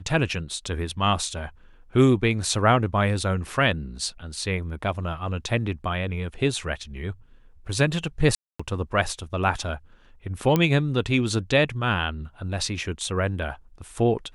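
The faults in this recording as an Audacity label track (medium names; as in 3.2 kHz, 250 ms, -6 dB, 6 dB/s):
8.350000	8.600000	dropout 245 ms
10.560000	10.560000	pop -8 dBFS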